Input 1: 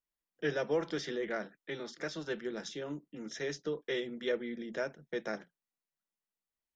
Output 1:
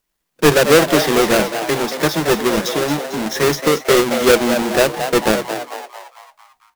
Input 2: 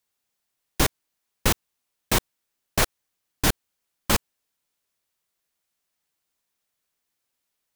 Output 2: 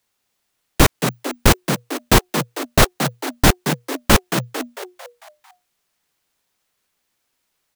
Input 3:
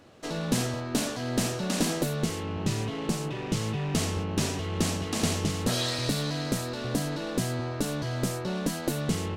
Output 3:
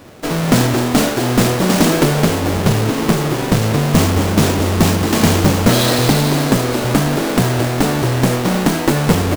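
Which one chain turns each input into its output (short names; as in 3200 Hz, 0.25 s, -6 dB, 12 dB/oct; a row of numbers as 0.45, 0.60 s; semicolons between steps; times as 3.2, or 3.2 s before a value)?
half-waves squared off; on a send: frequency-shifting echo 0.224 s, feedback 50%, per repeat +120 Hz, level -8.5 dB; on the sum: normalise peaks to -1.5 dBFS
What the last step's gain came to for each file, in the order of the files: +17.0, +4.0, +9.5 dB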